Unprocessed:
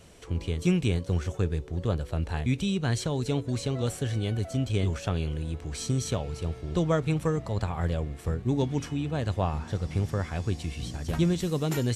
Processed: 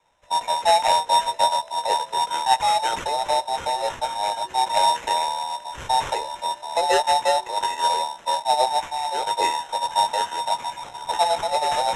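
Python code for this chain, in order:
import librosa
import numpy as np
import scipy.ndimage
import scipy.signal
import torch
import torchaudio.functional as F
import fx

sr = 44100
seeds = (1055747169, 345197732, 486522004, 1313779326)

p1 = fx.band_invert(x, sr, width_hz=1000)
p2 = fx.doubler(p1, sr, ms=18.0, db=-7.0)
p3 = fx.quant_companded(p2, sr, bits=4)
p4 = p2 + (p3 * librosa.db_to_amplitude(-6.0))
p5 = scipy.signal.sosfilt(scipy.signal.butter(4, 440.0, 'highpass', fs=sr, output='sos'), p4)
p6 = fx.sample_hold(p5, sr, seeds[0], rate_hz=4600.0, jitter_pct=0)
p7 = scipy.signal.sosfilt(scipy.signal.butter(4, 9900.0, 'lowpass', fs=sr, output='sos'), p6)
p8 = fx.band_widen(p7, sr, depth_pct=70)
y = p8 * librosa.db_to_amplitude(1.5)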